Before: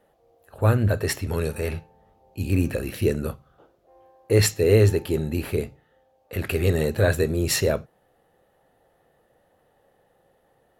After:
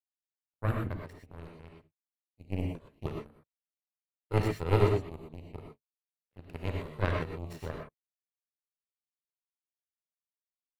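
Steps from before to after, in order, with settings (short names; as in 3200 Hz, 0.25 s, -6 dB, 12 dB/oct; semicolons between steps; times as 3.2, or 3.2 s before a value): power-law curve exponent 3; tone controls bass +7 dB, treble -10 dB; non-linear reverb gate 0.14 s rising, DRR 1 dB; gain -4.5 dB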